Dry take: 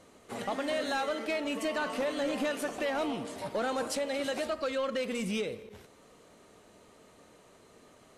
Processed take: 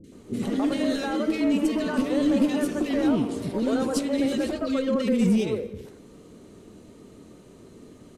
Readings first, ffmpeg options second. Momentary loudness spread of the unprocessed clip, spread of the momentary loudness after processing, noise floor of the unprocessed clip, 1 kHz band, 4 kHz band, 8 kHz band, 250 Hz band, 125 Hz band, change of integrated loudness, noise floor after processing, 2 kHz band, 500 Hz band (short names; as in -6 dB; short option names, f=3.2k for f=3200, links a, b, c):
5 LU, 7 LU, -59 dBFS, 0.0 dB, +2.0 dB, +3.0 dB, +14.0 dB, +14.5 dB, +8.0 dB, -49 dBFS, -0.5 dB, +4.5 dB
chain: -filter_complex "[0:a]lowshelf=f=500:t=q:w=1.5:g=10.5,asplit=2[a][b];[b]aeval=exprs='0.0944*(abs(mod(val(0)/0.0944+3,4)-2)-1)':c=same,volume=-10.5dB[c];[a][c]amix=inputs=2:normalize=0,acrossover=split=420|1900[d][e][f];[f]adelay=40[g];[e]adelay=120[h];[d][h][g]amix=inputs=3:normalize=0,volume=1dB"